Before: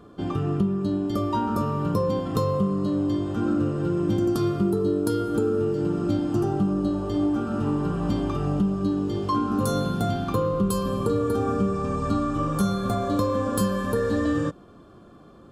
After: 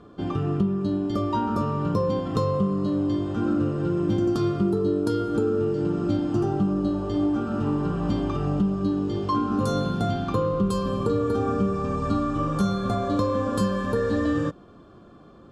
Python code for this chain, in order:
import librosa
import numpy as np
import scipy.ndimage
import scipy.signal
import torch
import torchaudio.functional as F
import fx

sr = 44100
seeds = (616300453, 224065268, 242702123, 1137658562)

y = scipy.signal.sosfilt(scipy.signal.butter(2, 6600.0, 'lowpass', fs=sr, output='sos'), x)